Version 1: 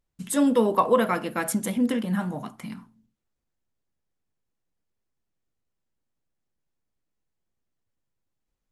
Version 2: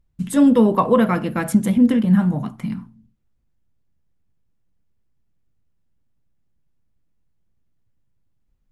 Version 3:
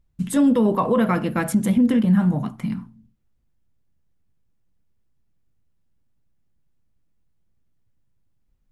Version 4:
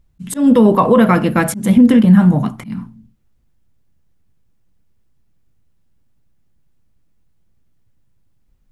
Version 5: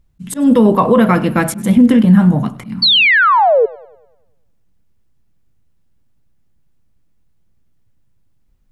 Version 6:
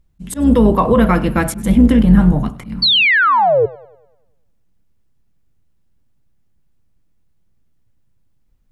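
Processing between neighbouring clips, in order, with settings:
tone controls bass +13 dB, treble -5 dB; gain +2.5 dB
limiter -10.5 dBFS, peak gain reduction 6.5 dB
auto swell 0.183 s; gain +8.5 dB
painted sound fall, 2.82–3.66, 420–4600 Hz -10 dBFS; warbling echo 99 ms, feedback 50%, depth 82 cents, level -22 dB
octaver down 2 oct, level -5 dB; gain -2 dB

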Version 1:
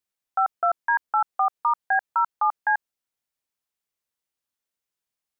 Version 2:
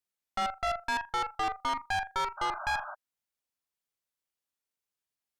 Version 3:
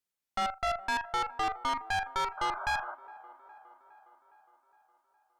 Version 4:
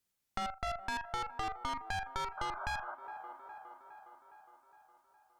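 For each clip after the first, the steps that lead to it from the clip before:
flutter echo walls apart 6.9 m, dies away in 0.24 s; tube stage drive 27 dB, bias 0.75; painted sound noise, 2.37–2.95, 580–1600 Hz -41 dBFS
band-limited delay 0.412 s, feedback 60%, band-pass 670 Hz, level -17 dB
tone controls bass +7 dB, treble +2 dB; compressor 2.5:1, threshold -43 dBFS, peak gain reduction 11.5 dB; gain +3.5 dB

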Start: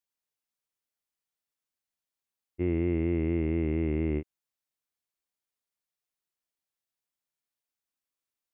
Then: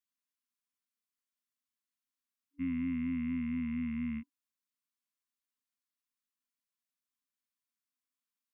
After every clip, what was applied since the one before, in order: band shelf 640 Hz +10.5 dB 1.3 oct; FFT band-reject 280–1000 Hz; resonant low shelf 180 Hz -9.5 dB, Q 3; gain -4 dB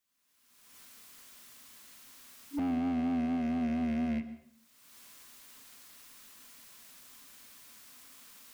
recorder AGC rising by 38 dB/s; hard clip -37 dBFS, distortion -11 dB; plate-style reverb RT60 0.66 s, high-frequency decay 0.9×, pre-delay 0.105 s, DRR 13.5 dB; gain +7.5 dB

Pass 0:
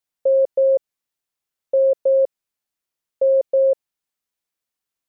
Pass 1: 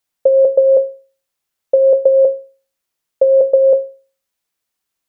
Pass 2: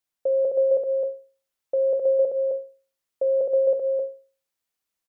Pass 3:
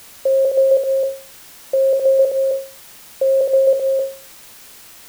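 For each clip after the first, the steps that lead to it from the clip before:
in parallel at +1 dB: level quantiser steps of 19 dB; on the sum: notches 60/120/180/240/300/360/420/480/540 Hz; gain +4.5 dB
limiter -9.5 dBFS, peak gain reduction 7 dB; echo 0.262 s -3 dB; gain -8 dB
requantised 8-bit, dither triangular; gain +6.5 dB

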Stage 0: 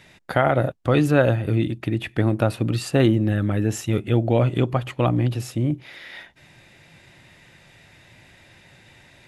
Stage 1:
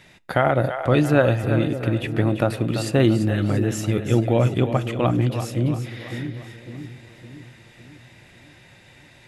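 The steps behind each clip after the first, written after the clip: split-band echo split 460 Hz, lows 0.557 s, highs 0.34 s, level -9 dB; reverb RT60 0.35 s, pre-delay 5 ms, DRR 19.5 dB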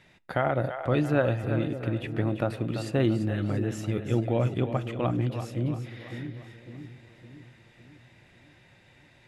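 high shelf 5400 Hz -8 dB; gain -7 dB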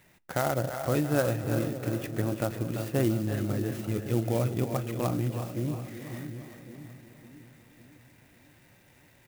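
on a send: feedback echo 0.37 s, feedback 56%, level -12 dB; on the sum: clock jitter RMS 0.051 ms; gain -2 dB

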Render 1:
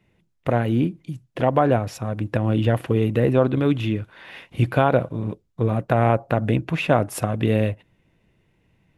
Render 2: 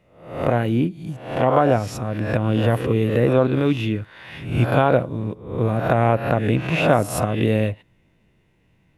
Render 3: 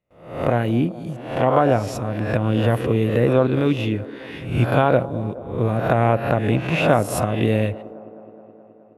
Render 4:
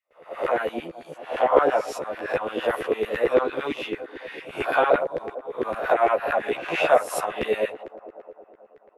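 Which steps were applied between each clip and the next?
spectral swells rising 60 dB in 0.58 s
gate with hold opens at -48 dBFS; band-limited delay 0.211 s, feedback 72%, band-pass 470 Hz, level -16 dB
LFO high-pass saw down 8.9 Hz 360–2000 Hz; chorus voices 4, 0.77 Hz, delay 13 ms, depth 1.4 ms; gain -1 dB

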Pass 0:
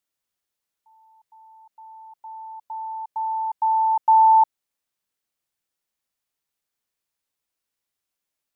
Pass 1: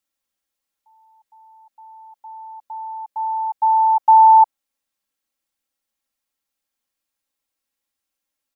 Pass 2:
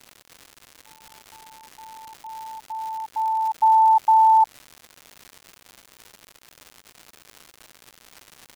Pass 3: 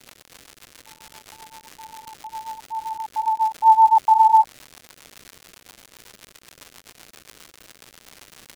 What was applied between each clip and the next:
dynamic EQ 790 Hz, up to +4 dB, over -26 dBFS, Q 1.2; comb 3.7 ms
limiter -11 dBFS, peak gain reduction 5.5 dB; crackle 220/s -31 dBFS
rotary speaker horn 7.5 Hz; gain +6 dB

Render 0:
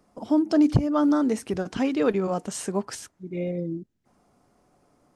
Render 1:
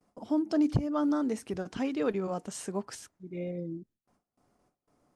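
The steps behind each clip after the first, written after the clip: gate with hold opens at -53 dBFS; gain -7 dB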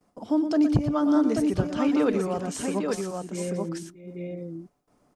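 tapped delay 0.117/0.124/0.626/0.835 s -9.5/-18.5/-15/-4 dB; gain +4.5 dB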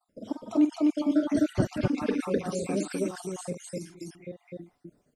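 random spectral dropouts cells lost 60%; loudspeakers at several distances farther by 16 m -10 dB, 87 m -1 dB; gain -1 dB

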